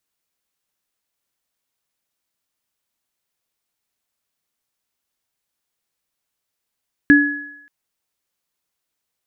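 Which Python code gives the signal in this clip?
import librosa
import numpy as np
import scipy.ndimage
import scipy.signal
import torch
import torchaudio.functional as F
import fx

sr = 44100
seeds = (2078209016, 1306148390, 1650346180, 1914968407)

y = fx.additive_free(sr, length_s=0.58, hz=290.0, level_db=-6.0, upper_db=(-3.0,), decay_s=0.61, upper_decays_s=(0.9,), upper_hz=(1690.0,))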